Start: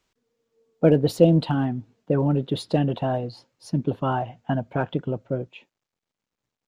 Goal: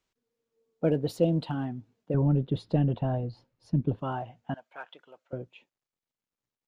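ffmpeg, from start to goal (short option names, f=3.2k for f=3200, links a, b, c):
-filter_complex "[0:a]asettb=1/sr,asplit=3[a][b][c];[a]atrim=end=2.144[d];[b]atrim=start=2.14:end=3.99,asetpts=PTS-STARTPTS,afade=t=in:d=0.004:c=qsin,afade=t=out:st=1.846:d=0.004:c=qsin,aemphasis=mode=reproduction:type=bsi[e];[c]atrim=start=3.986[f];[d][e]acrossfade=d=0.004:c1=hsin:c2=qsin[g];[g][f]acrossfade=d=0.004:c1=qsin:c2=hsin,asettb=1/sr,asplit=3[h][i][j];[h]atrim=end=4.544[k];[i]atrim=start=4.54:end=5.33,asetpts=PTS-STARTPTS,afade=t=in:d=0.004:c=qsin,afade=t=out:st=0.786:d=0.004:c=qsin,highpass=1.1k[l];[j]atrim=start=5.326[m];[k][l]acrossfade=d=0.004:c1=hsin:c2=qsin[n];[n][m]acrossfade=d=0.004:c1=qsin:c2=hsin,volume=-8.5dB"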